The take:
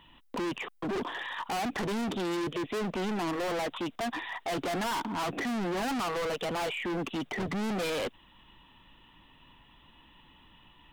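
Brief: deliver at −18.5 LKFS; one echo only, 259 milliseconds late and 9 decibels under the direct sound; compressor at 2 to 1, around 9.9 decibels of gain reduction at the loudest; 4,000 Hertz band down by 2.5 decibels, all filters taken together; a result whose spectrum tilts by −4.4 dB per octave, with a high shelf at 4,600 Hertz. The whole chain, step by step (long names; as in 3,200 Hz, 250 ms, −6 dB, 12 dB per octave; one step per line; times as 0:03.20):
parametric band 4,000 Hz −7 dB
high-shelf EQ 4,600 Hz +7 dB
downward compressor 2 to 1, threshold −50 dBFS
single-tap delay 259 ms −9 dB
level +24 dB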